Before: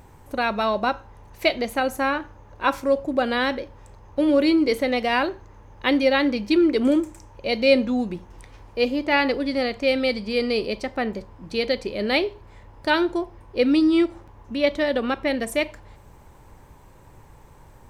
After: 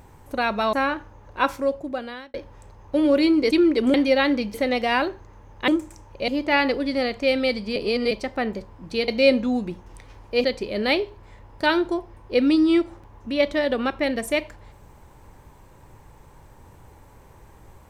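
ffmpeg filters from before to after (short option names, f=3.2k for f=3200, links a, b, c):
-filter_complex "[0:a]asplit=12[a][b][c][d][e][f][g][h][i][j][k][l];[a]atrim=end=0.732[m];[b]atrim=start=1.968:end=3.58,asetpts=PTS-STARTPTS,afade=t=out:st=0.702:d=0.91[n];[c]atrim=start=3.58:end=4.752,asetpts=PTS-STARTPTS,afade=t=in:d=0.004:c=hsin[o];[d]atrim=start=6.488:end=6.922[p];[e]atrim=start=5.888:end=6.492[q];[f]atrim=start=4.748:end=5.892[r];[g]atrim=start=6.918:end=7.522[s];[h]atrim=start=8.878:end=10.362[t];[i]atrim=start=10.358:end=10.712,asetpts=PTS-STARTPTS,areverse[u];[j]atrim=start=10.708:end=11.682[v];[k]atrim=start=7.518:end=8.882[w];[l]atrim=start=11.678[x];[n][o]concat=n=2:v=0:a=1[y];[m][y]acrossfade=d=0.004:c1=hsin:c2=hsin[z];[z][p]acrossfade=d=0.004:c1=hsin:c2=hsin[aa];[aa][q]acrossfade=d=0.004:c1=hsin:c2=hsin[ab];[ab][r]acrossfade=d=0.004:c1=hsin:c2=hsin[ac];[ac][s]acrossfade=d=0.004:c1=hsin:c2=hsin[ad];[ad][t]acrossfade=d=0.004:c1=hsin:c2=hsin[ae];[ae][u]acrossfade=d=0.004:c1=hsin:c2=hsin[af];[af][v]acrossfade=d=0.004:c1=hsin:c2=hsin[ag];[ag][w]acrossfade=d=0.004:c1=hsin:c2=hsin[ah];[ah][x]acrossfade=d=0.004:c1=hsin:c2=hsin"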